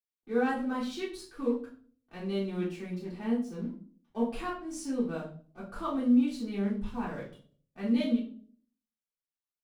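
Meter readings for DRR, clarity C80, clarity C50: −7.5 dB, 12.0 dB, 6.5 dB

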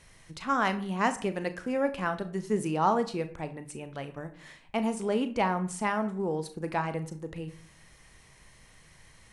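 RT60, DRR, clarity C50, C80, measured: 0.50 s, 9.5 dB, 14.0 dB, 17.5 dB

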